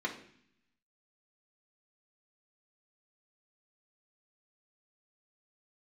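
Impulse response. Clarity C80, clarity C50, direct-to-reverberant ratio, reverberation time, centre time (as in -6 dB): 13.5 dB, 10.0 dB, -2.5 dB, 0.60 s, 15 ms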